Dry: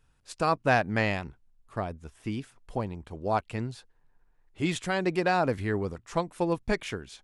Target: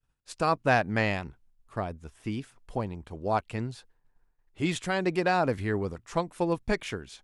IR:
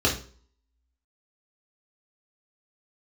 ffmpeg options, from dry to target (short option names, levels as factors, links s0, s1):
-af "agate=range=0.0224:threshold=0.00141:ratio=3:detection=peak"